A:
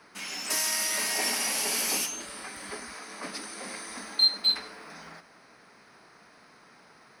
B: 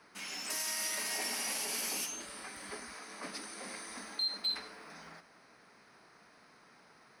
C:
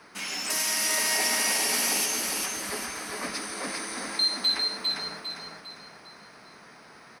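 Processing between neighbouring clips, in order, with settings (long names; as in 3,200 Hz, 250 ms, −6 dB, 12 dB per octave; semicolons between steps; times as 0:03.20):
brickwall limiter −21 dBFS, peak gain reduction 8.5 dB; level −5.5 dB
repeating echo 402 ms, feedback 40%, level −3.5 dB; level +9 dB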